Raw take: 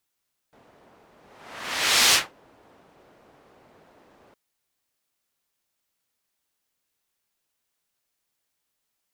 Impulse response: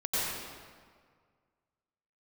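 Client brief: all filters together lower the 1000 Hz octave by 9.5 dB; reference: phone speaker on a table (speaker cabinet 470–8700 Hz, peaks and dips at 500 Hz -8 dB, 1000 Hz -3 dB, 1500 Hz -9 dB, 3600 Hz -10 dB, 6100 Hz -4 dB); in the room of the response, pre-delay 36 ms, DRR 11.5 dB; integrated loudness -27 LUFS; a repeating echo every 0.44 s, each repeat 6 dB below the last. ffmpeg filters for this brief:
-filter_complex "[0:a]equalizer=f=1k:t=o:g=-8,aecho=1:1:440|880|1320|1760|2200|2640:0.501|0.251|0.125|0.0626|0.0313|0.0157,asplit=2[a][b];[1:a]atrim=start_sample=2205,adelay=36[c];[b][c]afir=irnorm=-1:irlink=0,volume=-20.5dB[d];[a][d]amix=inputs=2:normalize=0,highpass=f=470:w=0.5412,highpass=f=470:w=1.3066,equalizer=f=500:t=q:w=4:g=-8,equalizer=f=1k:t=q:w=4:g=-3,equalizer=f=1.5k:t=q:w=4:g=-9,equalizer=f=3.6k:t=q:w=4:g=-10,equalizer=f=6.1k:t=q:w=4:g=-4,lowpass=f=8.7k:w=0.5412,lowpass=f=8.7k:w=1.3066,volume=-0.5dB"

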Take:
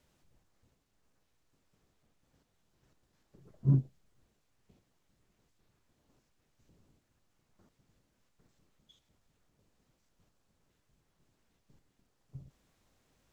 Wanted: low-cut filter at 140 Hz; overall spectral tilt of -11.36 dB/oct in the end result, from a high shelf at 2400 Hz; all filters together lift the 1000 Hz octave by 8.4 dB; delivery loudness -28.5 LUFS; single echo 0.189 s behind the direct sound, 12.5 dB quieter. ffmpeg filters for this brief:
-af "highpass=140,equalizer=f=1k:t=o:g=8.5,highshelf=f=2.4k:g=7,aecho=1:1:189:0.237,volume=7.5dB"

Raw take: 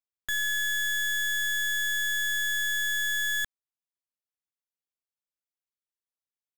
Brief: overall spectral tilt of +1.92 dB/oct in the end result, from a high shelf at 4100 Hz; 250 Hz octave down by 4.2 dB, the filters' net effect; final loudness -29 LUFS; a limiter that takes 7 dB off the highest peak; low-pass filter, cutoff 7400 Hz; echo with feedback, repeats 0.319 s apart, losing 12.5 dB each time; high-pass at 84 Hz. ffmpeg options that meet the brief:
-af "highpass=84,lowpass=7.4k,equalizer=f=250:t=o:g=-5.5,highshelf=f=4.1k:g=6.5,alimiter=level_in=4dB:limit=-24dB:level=0:latency=1,volume=-4dB,aecho=1:1:319|638|957:0.237|0.0569|0.0137,volume=3.5dB"

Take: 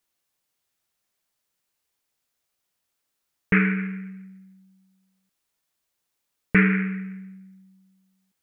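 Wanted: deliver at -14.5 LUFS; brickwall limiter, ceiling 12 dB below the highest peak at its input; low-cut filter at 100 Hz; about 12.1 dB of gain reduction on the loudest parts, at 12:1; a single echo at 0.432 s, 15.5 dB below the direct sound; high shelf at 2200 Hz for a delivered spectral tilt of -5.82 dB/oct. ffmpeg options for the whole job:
-af "highpass=100,highshelf=f=2.2k:g=-4.5,acompressor=threshold=-26dB:ratio=12,alimiter=level_in=1.5dB:limit=-24dB:level=0:latency=1,volume=-1.5dB,aecho=1:1:432:0.168,volume=22dB"

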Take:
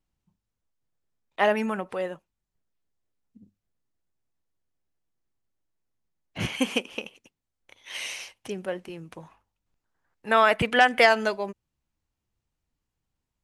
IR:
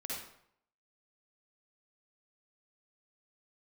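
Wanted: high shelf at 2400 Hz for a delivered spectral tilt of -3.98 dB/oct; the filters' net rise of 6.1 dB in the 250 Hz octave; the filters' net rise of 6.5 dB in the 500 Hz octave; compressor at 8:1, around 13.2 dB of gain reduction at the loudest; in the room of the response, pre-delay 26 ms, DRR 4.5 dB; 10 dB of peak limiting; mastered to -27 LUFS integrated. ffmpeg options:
-filter_complex "[0:a]equalizer=f=250:t=o:g=5.5,equalizer=f=500:t=o:g=7,highshelf=f=2.4k:g=4.5,acompressor=threshold=-22dB:ratio=8,alimiter=limit=-19.5dB:level=0:latency=1,asplit=2[a][b];[1:a]atrim=start_sample=2205,adelay=26[c];[b][c]afir=irnorm=-1:irlink=0,volume=-5dB[d];[a][d]amix=inputs=2:normalize=0,volume=4dB"

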